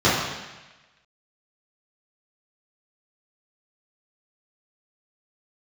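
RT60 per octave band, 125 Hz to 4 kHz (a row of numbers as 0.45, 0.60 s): 1.1, 1.1, 1.1, 1.1, 1.3, 1.2 s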